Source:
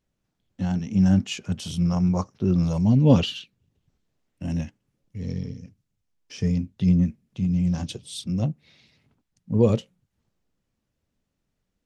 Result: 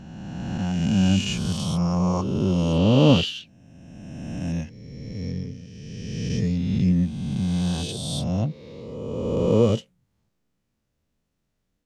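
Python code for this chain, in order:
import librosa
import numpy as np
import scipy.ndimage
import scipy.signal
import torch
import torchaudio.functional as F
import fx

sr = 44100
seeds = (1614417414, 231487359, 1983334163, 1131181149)

y = fx.spec_swells(x, sr, rise_s=2.15)
y = y * 10.0 ** (-2.0 / 20.0)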